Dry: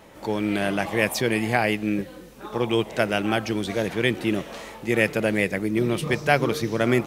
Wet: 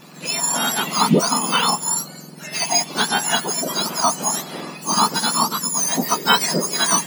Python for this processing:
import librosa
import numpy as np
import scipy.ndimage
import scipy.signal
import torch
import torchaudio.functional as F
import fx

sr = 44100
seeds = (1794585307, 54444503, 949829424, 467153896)

y = fx.octave_mirror(x, sr, pivot_hz=1500.0)
y = fx.notch(y, sr, hz=3700.0, q=20.0)
y = y * 10.0 ** (8.0 / 20.0)